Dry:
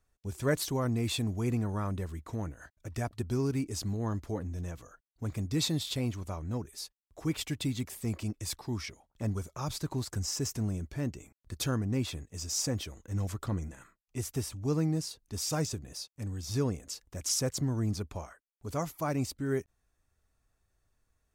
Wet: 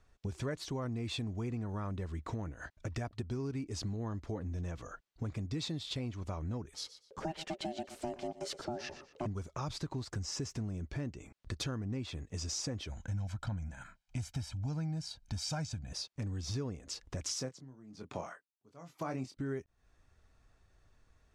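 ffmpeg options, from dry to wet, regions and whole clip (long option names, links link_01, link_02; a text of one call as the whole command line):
ffmpeg -i in.wav -filter_complex "[0:a]asettb=1/sr,asplit=3[link_01][link_02][link_03];[link_01]atrim=end=6.744[link_04];[link_02]atrim=start=6.74:end=9.26,asetpts=PTS-STARTPTS,afade=type=in:duration=0.004:curve=qsin,afade=type=out:start_time=2.516:duration=0.004:curve=qsin,aecho=1:1:120|240:0.141|0.0339,atrim=end_sample=111132,aeval=exprs='val(0)*sin(2*PI*480*n/s)':channel_layout=same[link_05];[link_03]atrim=start=9.256[link_06];[link_04][link_05]acrossfade=duration=0.004:curve1=hsin:curve2=qsin[link_07];[link_07][link_06]acrossfade=duration=0.004:curve1=qsin:curve2=hsin,asettb=1/sr,asplit=3[link_08][link_09][link_10];[link_08]atrim=end=12.894[link_11];[link_09]atrim=start=12.89:end=15.93,asetpts=PTS-STARTPTS,afade=type=in:duration=0.004:curve=qsin,afade=type=out:start_time=3.036:duration=0.004:curve=qsin,equalizer=frequency=440:width_type=o:width=0.83:gain=-6.5,aecho=1:1:1.3:0.76,atrim=end_sample=134064[link_12];[link_10]atrim=start=15.926[link_13];[link_11][link_12]acrossfade=duration=0.004:curve1=hsin:curve2=qsin[link_14];[link_14][link_13]acrossfade=duration=0.004:curve1=qsin:curve2=hsin,asettb=1/sr,asplit=3[link_15][link_16][link_17];[link_15]atrim=end=17.354[link_18];[link_16]atrim=start=17.35:end=19.37,asetpts=PTS-STARTPTS,afade=type=in:duration=0.004:curve=qsin,afade=type=out:start_time=2.016:duration=0.004:curve=qsin,highpass=frequency=130:width=0.5412,highpass=frequency=130:width=1.3066,asplit=2[link_19][link_20];[link_20]adelay=23,volume=-7dB[link_21];[link_19][link_21]amix=inputs=2:normalize=0,atrim=end_sample=89082,aeval=exprs='val(0)*pow(10,-32*(0.5-0.5*cos(2*PI*1.1*n/s))/20)':channel_layout=same[link_22];[link_17]atrim=start=19.366[link_23];[link_18][link_22]acrossfade=duration=0.004:curve1=hsin:curve2=qsin[link_24];[link_24][link_23]acrossfade=duration=0.004:curve1=qsin:curve2=hsin,lowpass=5400,acompressor=threshold=-46dB:ratio=5,volume=9dB" out.wav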